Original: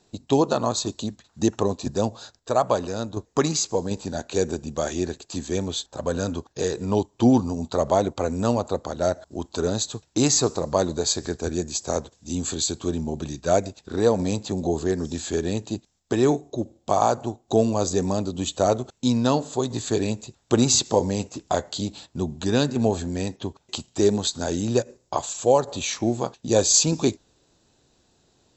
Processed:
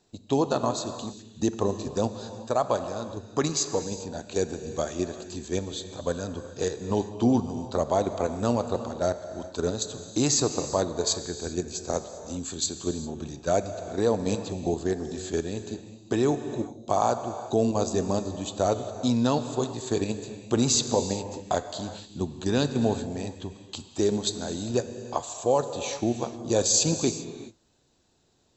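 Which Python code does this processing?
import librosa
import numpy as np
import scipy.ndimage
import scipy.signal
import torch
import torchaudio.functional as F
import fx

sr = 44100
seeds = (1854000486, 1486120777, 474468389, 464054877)

p1 = fx.level_steps(x, sr, step_db=24)
p2 = x + (p1 * librosa.db_to_amplitude(1.0))
p3 = fx.rev_gated(p2, sr, seeds[0], gate_ms=430, shape='flat', drr_db=9.0)
y = p3 * librosa.db_to_amplitude(-8.0)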